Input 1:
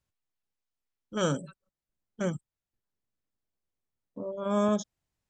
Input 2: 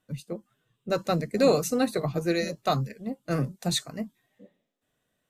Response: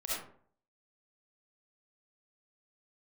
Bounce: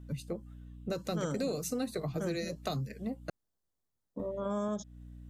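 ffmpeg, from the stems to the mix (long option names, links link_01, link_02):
-filter_complex "[0:a]equalizer=frequency=2500:width=2.8:gain=-15,volume=2dB[link_01];[1:a]acrossover=split=500|3000[link_02][link_03][link_04];[link_03]acompressor=threshold=-34dB:ratio=6[link_05];[link_02][link_05][link_04]amix=inputs=3:normalize=0,aeval=exprs='val(0)+0.00398*(sin(2*PI*60*n/s)+sin(2*PI*2*60*n/s)/2+sin(2*PI*3*60*n/s)/3+sin(2*PI*4*60*n/s)/4+sin(2*PI*5*60*n/s)/5)':channel_layout=same,volume=1dB,asplit=3[link_06][link_07][link_08];[link_06]atrim=end=3.3,asetpts=PTS-STARTPTS,afade=type=out:start_time=3.296:duration=0.004:curve=hsin[link_09];[link_07]atrim=start=3.3:end=4.19,asetpts=PTS-STARTPTS,volume=0[link_10];[link_08]atrim=start=4.19,asetpts=PTS-STARTPTS,afade=type=in:duration=0.004:curve=hsin[link_11];[link_09][link_10][link_11]concat=n=3:v=0:a=1[link_12];[link_01][link_12]amix=inputs=2:normalize=0,acompressor=threshold=-34dB:ratio=3"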